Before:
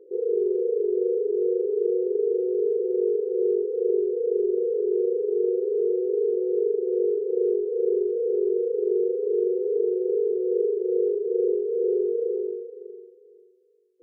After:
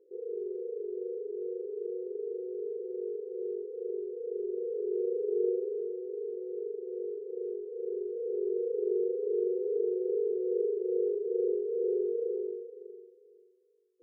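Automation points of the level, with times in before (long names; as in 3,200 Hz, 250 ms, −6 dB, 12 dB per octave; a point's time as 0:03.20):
0:04.16 −13 dB
0:05.48 −5 dB
0:05.92 −13.5 dB
0:07.74 −13.5 dB
0:08.71 −6.5 dB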